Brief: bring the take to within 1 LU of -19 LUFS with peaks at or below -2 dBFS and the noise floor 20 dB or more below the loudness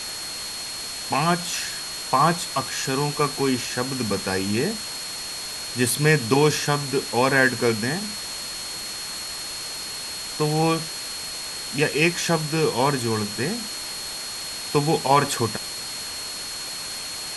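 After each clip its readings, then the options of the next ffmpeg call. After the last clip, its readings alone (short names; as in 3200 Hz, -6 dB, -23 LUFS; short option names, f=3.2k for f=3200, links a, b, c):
steady tone 4300 Hz; tone level -33 dBFS; noise floor -33 dBFS; noise floor target -44 dBFS; loudness -24.0 LUFS; peak -3.5 dBFS; loudness target -19.0 LUFS
-> -af "bandreject=f=4.3k:w=30"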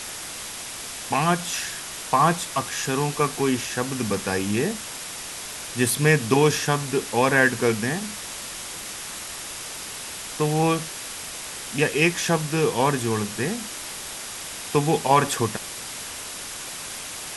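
steady tone none; noise floor -35 dBFS; noise floor target -45 dBFS
-> -af "afftdn=nr=10:nf=-35"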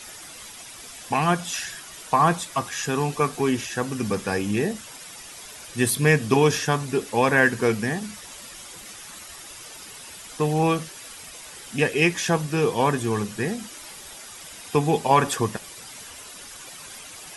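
noise floor -42 dBFS; noise floor target -43 dBFS
-> -af "afftdn=nr=6:nf=-42"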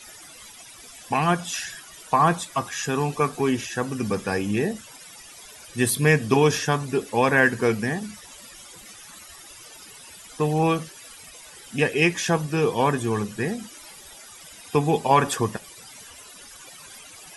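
noise floor -45 dBFS; loudness -23.5 LUFS; peak -4.0 dBFS; loudness target -19.0 LUFS
-> -af "volume=4.5dB,alimiter=limit=-2dB:level=0:latency=1"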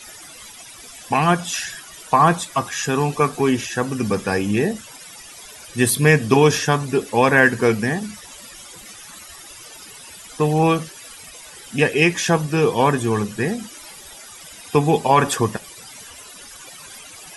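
loudness -19.0 LUFS; peak -2.0 dBFS; noise floor -41 dBFS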